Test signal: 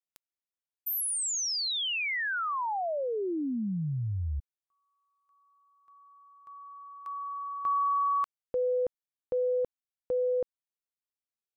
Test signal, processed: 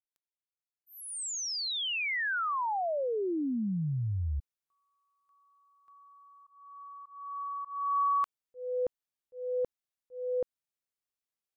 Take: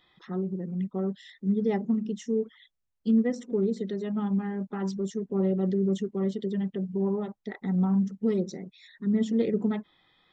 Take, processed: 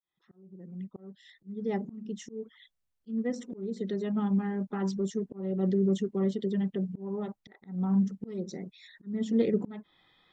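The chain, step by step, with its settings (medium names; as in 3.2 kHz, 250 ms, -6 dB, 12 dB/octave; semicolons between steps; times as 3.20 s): fade-in on the opening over 2.30 s; slow attack 347 ms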